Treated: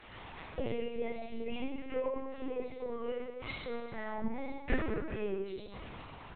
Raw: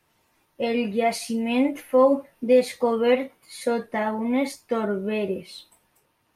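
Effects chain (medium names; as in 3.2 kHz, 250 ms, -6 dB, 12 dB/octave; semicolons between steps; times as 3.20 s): bass shelf 130 Hz -5 dB; compression 5:1, threshold -29 dBFS, peak gain reduction 14.5 dB; inverted gate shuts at -36 dBFS, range -25 dB; 2.33–3.16 s: valve stage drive 42 dB, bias 0.5; chorus voices 6, 0.44 Hz, delay 20 ms, depth 2.2 ms; delay 394 ms -16.5 dB; reverberation RT60 1.5 s, pre-delay 4 ms, DRR -3 dB; LPC vocoder at 8 kHz pitch kept; trim +17.5 dB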